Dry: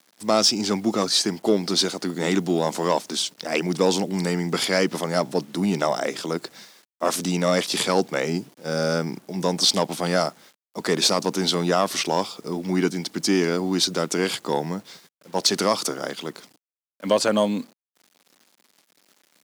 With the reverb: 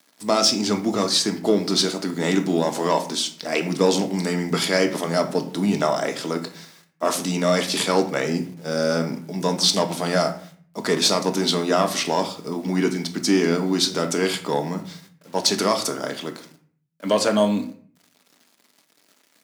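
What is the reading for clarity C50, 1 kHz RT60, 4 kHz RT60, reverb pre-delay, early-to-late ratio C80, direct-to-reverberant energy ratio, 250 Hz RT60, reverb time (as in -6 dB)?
11.5 dB, 0.50 s, 0.35 s, 3 ms, 15.5 dB, 5.0 dB, 0.75 s, 0.50 s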